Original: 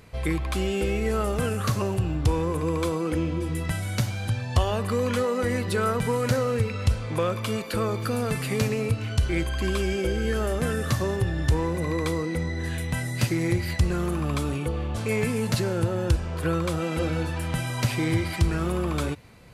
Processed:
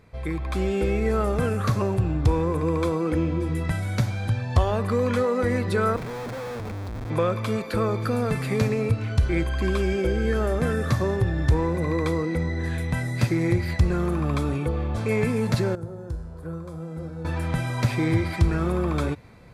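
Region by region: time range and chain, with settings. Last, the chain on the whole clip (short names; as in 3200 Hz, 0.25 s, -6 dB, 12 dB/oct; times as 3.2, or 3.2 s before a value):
5.96–7.1 tube stage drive 32 dB, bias 0.45 + Schmitt trigger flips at -35 dBFS
15.75–17.25 bell 2600 Hz -14 dB 1.4 oct + resonator 54 Hz, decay 1.1 s, harmonics odd, mix 80%
whole clip: high shelf 4200 Hz -10.5 dB; notch 2900 Hz, Q 7.9; AGC gain up to 6 dB; gain -3.5 dB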